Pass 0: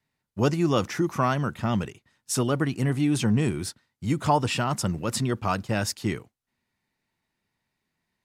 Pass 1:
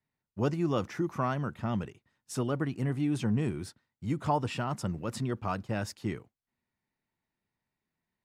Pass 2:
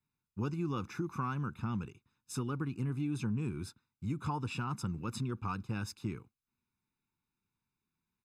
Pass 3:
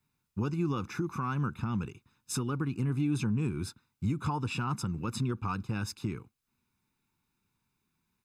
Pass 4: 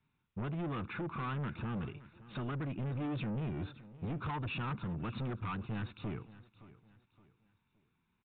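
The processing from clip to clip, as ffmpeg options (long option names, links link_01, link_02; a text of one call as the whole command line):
ffmpeg -i in.wav -af "highshelf=frequency=2800:gain=-8.5,volume=-6dB" out.wav
ffmpeg -i in.wav -af "aecho=1:1:0.8:0.89,acompressor=threshold=-28dB:ratio=2.5,volume=-5dB" out.wav
ffmpeg -i in.wav -af "alimiter=level_in=6.5dB:limit=-24dB:level=0:latency=1:release=411,volume=-6.5dB,volume=8.5dB" out.wav
ffmpeg -i in.wav -af "asoftclip=type=tanh:threshold=-35.5dB,aecho=1:1:568|1136|1704:0.126|0.0453|0.0163,aresample=8000,aresample=44100,volume=1dB" out.wav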